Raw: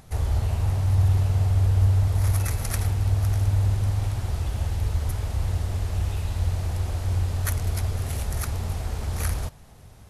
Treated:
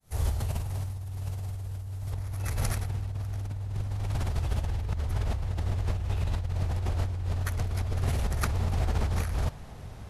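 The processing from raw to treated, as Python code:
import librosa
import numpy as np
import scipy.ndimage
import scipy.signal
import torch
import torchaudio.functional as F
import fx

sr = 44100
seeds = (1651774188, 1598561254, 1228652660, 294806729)

y = fx.fade_in_head(x, sr, length_s=0.55)
y = fx.high_shelf(y, sr, hz=6200.0, db=fx.steps((0.0, 8.0), (2.11, -6.0), (4.65, -11.5)))
y = fx.over_compress(y, sr, threshold_db=-30.0, ratio=-1.0)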